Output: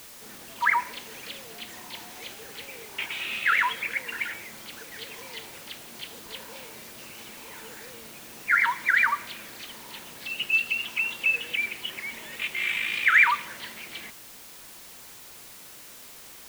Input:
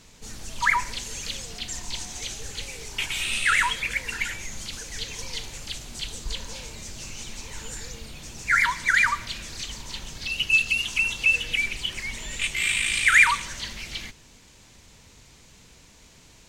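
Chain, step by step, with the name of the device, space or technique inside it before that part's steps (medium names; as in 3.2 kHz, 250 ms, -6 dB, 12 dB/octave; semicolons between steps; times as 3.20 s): wax cylinder (band-pass 260–2500 Hz; wow and flutter 29 cents; white noise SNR 16 dB)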